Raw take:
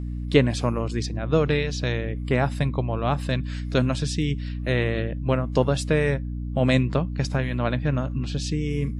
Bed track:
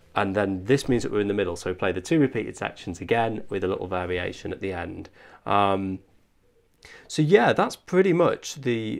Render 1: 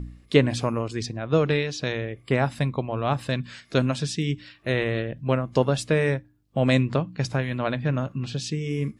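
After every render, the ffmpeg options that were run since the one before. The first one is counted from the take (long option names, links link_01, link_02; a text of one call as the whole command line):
ffmpeg -i in.wav -af "bandreject=frequency=60:width_type=h:width=4,bandreject=frequency=120:width_type=h:width=4,bandreject=frequency=180:width_type=h:width=4,bandreject=frequency=240:width_type=h:width=4,bandreject=frequency=300:width_type=h:width=4" out.wav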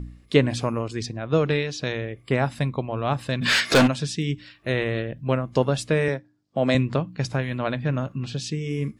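ffmpeg -i in.wav -filter_complex "[0:a]asplit=3[link_01][link_02][link_03];[link_01]afade=type=out:start_time=3.41:duration=0.02[link_04];[link_02]asplit=2[link_05][link_06];[link_06]highpass=frequency=720:poles=1,volume=34dB,asoftclip=type=tanh:threshold=-8dB[link_07];[link_05][link_07]amix=inputs=2:normalize=0,lowpass=frequency=6500:poles=1,volume=-6dB,afade=type=in:start_time=3.41:duration=0.02,afade=type=out:start_time=3.86:duration=0.02[link_08];[link_03]afade=type=in:start_time=3.86:duration=0.02[link_09];[link_04][link_08][link_09]amix=inputs=3:normalize=0,asettb=1/sr,asplit=3[link_10][link_11][link_12];[link_10]atrim=end=6.084[link_13];[link_11]atrim=start=6.08:end=6.75,asetpts=PTS-STARTPTS,afade=type=in:duration=0.004:curve=qsin,afade=type=out:start_time=0.666:duration=0.004:curve=qsin,highpass=170,equalizer=frequency=660:width_type=q:width=4:gain=3,equalizer=frequency=2700:width_type=q:width=4:gain=-4,equalizer=frequency=5000:width_type=q:width=4:gain=6,lowpass=frequency=7900:width=0.5412,lowpass=frequency=7900:width=1.3066[link_14];[link_12]atrim=start=6.746[link_15];[link_13][link_14]acrossfade=duration=0.004:curve1=hsin:curve2=qsin[link_16];[link_16][link_15]acrossfade=duration=0.004:curve1=qsin:curve2=hsin" out.wav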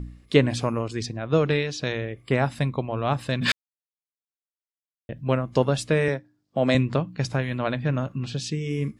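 ffmpeg -i in.wav -filter_complex "[0:a]asplit=3[link_01][link_02][link_03];[link_01]atrim=end=3.52,asetpts=PTS-STARTPTS,afade=type=out:start_time=3.516:duration=0.004:curve=hsin[link_04];[link_02]atrim=start=3.52:end=5.09,asetpts=PTS-STARTPTS,volume=0[link_05];[link_03]atrim=start=5.09,asetpts=PTS-STARTPTS,afade=type=in:duration=0.004:curve=hsin[link_06];[link_04][link_05][link_06]concat=n=3:v=0:a=1" out.wav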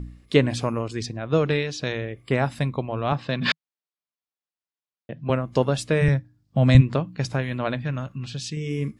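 ffmpeg -i in.wav -filter_complex "[0:a]asettb=1/sr,asplit=3[link_01][link_02][link_03];[link_01]atrim=end=3.124[link_04];[link_02]atrim=start=3.12:end=5.3,asetpts=PTS-STARTPTS,afade=type=in:duration=0.004:curve=qsin,afade=type=out:start_time=2.176:duration=0.004:curve=qsin,highpass=130,equalizer=frequency=160:width_type=q:width=4:gain=5,equalizer=frequency=740:width_type=q:width=4:gain=3,equalizer=frequency=1100:width_type=q:width=4:gain=3,lowpass=frequency=5400:width=0.5412,lowpass=frequency=5400:width=1.3066[link_05];[link_03]atrim=start=5.296[link_06];[link_04][link_05]acrossfade=duration=0.004:curve1=hsin:curve2=qsin[link_07];[link_07][link_06]acrossfade=duration=0.004:curve1=qsin:curve2=hsin,asplit=3[link_08][link_09][link_10];[link_08]afade=type=out:start_time=6.01:duration=0.02[link_11];[link_09]asubboost=boost=11.5:cutoff=120,afade=type=in:start_time=6.01:duration=0.02,afade=type=out:start_time=6.8:duration=0.02[link_12];[link_10]afade=type=in:start_time=6.8:duration=0.02[link_13];[link_11][link_12][link_13]amix=inputs=3:normalize=0,asettb=1/sr,asplit=3[link_14][link_15][link_16];[link_14]atrim=end=7.824[link_17];[link_15]atrim=start=7.82:end=8.57,asetpts=PTS-STARTPTS,afade=type=in:duration=0.004:curve=qsin,afade=type=out:start_time=0.746:duration=0.004:curve=qsin,equalizer=frequency=410:width_type=o:width=2.5:gain=-7[link_18];[link_16]atrim=start=8.566[link_19];[link_17][link_18]acrossfade=duration=0.004:curve1=hsin:curve2=qsin[link_20];[link_20][link_19]acrossfade=duration=0.004:curve1=qsin:curve2=hsin" out.wav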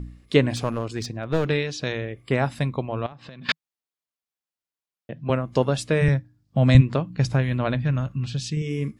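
ffmpeg -i in.wav -filter_complex "[0:a]asettb=1/sr,asplit=3[link_01][link_02][link_03];[link_01]atrim=end=0.564[link_04];[link_02]atrim=start=0.56:end=1.45,asetpts=PTS-STARTPTS,afade=type=in:duration=0.004:curve=qsin,afade=type=out:start_time=0.886:duration=0.004:curve=qsin,aeval=exprs='clip(val(0),-1,0.0473)':channel_layout=same[link_05];[link_03]atrim=start=1.446[link_06];[link_04][link_05]acrossfade=duration=0.004:curve1=hsin:curve2=qsin[link_07];[link_07][link_06]acrossfade=duration=0.004:curve1=qsin:curve2=hsin,asettb=1/sr,asplit=3[link_08][link_09][link_10];[link_08]atrim=end=3.064[link_11];[link_09]atrim=start=3.06:end=3.49,asetpts=PTS-STARTPTS,afade=type=in:duration=0.004:curve=qsin,afade=type=out:start_time=0.426:duration=0.004:curve=qsin,acompressor=threshold=-37dB:ratio=16:attack=3.2:release=140:knee=1:detection=peak[link_12];[link_10]atrim=start=3.486[link_13];[link_11][link_12]acrossfade=duration=0.004:curve1=hsin:curve2=qsin[link_14];[link_14][link_13]acrossfade=duration=0.004:curve1=qsin:curve2=hsin,asettb=1/sr,asplit=3[link_15][link_16][link_17];[link_15]atrim=end=7.104[link_18];[link_16]atrim=start=7.1:end=8.62,asetpts=PTS-STARTPTS,afade=type=in:duration=0.004:curve=qsin,afade=type=out:start_time=1.516:duration=0.004:curve=qsin,lowshelf=frequency=130:gain=11.5[link_19];[link_17]atrim=start=8.616[link_20];[link_18][link_19]acrossfade=duration=0.004:curve1=hsin:curve2=qsin[link_21];[link_21][link_20]acrossfade=duration=0.004:curve1=qsin:curve2=hsin" out.wav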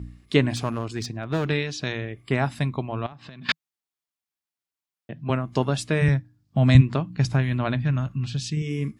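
ffmpeg -i in.wav -af "highpass=51,equalizer=frequency=510:width=4.6:gain=-9" out.wav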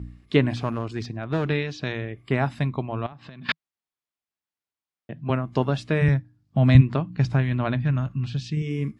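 ffmpeg -i in.wav -filter_complex "[0:a]aemphasis=mode=reproduction:type=cd,acrossover=split=5600[link_01][link_02];[link_02]acompressor=threshold=-56dB:ratio=4:attack=1:release=60[link_03];[link_01][link_03]amix=inputs=2:normalize=0" out.wav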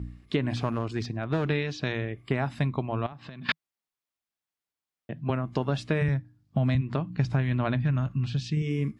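ffmpeg -i in.wav -af "alimiter=limit=-12dB:level=0:latency=1:release=166,acompressor=threshold=-22dB:ratio=4" out.wav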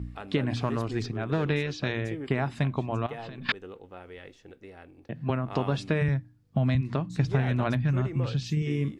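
ffmpeg -i in.wav -i bed.wav -filter_complex "[1:a]volume=-17.5dB[link_01];[0:a][link_01]amix=inputs=2:normalize=0" out.wav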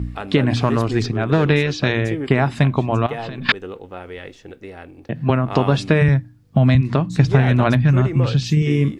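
ffmpeg -i in.wav -af "volume=11dB,alimiter=limit=-3dB:level=0:latency=1" out.wav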